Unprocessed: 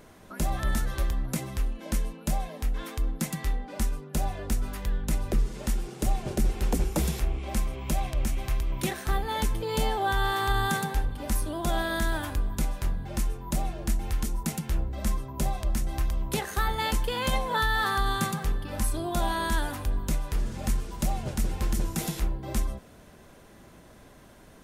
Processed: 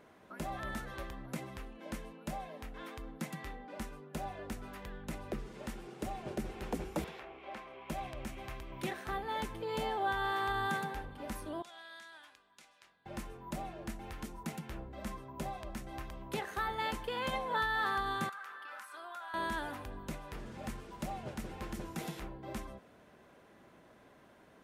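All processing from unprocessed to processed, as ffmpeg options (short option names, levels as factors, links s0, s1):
-filter_complex "[0:a]asettb=1/sr,asplit=3[s0][s1][s2];[s0]atrim=end=7.044[s3];[s1]atrim=start=7.04:end=7.9,asetpts=PTS-STARTPTS,afade=t=in:d=0.004:c=qsin,afade=t=out:st=0.856:d=0.004:c=qsin,highpass=f=110:p=1,acrossover=split=380 4100:gain=0.224 1 0.141[s4][s5][s6];[s4][s5][s6]amix=inputs=3:normalize=0[s7];[s2]atrim=start=7.896[s8];[s3][s7]acrossfade=d=0.004:c1=hsin:c2=qsin[s9];[s9][s8]acrossfade=d=0.004:c1=qsin:c2=hsin,asettb=1/sr,asplit=3[s10][s11][s12];[s10]atrim=end=11.624[s13];[s11]atrim=start=11.62:end=13.06,asetpts=PTS-STARTPTS,afade=t=in:d=0.004:c=qsin,afade=t=out:st=1.436:d=0.004:c=qsin,lowpass=5200,aderivative[s14];[s12]atrim=start=13.056[s15];[s13][s14]acrossfade=d=0.004:c1=hsin:c2=qsin[s16];[s16][s15]acrossfade=d=0.004:c1=qsin:c2=hsin,asettb=1/sr,asplit=3[s17][s18][s19];[s17]atrim=end=18.294[s20];[s18]atrim=start=18.29:end=19.34,asetpts=PTS-STARTPTS,afade=t=in:d=0.004:c=qsin,afade=t=out:st=1.046:d=0.004:c=qsin,highpass=960,equalizer=f=1400:w=2.2:g=14,acompressor=threshold=0.0141:ratio=5:attack=3.2:release=140:knee=1:detection=peak[s21];[s19]atrim=start=19.336[s22];[s20][s21]acrossfade=d=0.004:c1=hsin:c2=qsin[s23];[s23][s22]acrossfade=d=0.004:c1=qsin:c2=hsin,highpass=f=190:p=1,bass=f=250:g=-2,treble=f=4000:g=-11,volume=0.531"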